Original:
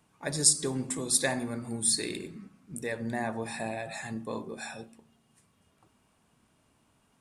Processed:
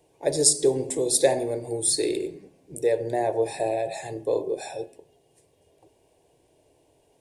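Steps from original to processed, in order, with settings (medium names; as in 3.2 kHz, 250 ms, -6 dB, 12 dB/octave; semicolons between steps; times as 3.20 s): peaking EQ 410 Hz +12.5 dB 2 oct; static phaser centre 530 Hz, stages 4; de-hum 212.2 Hz, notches 15; trim +3 dB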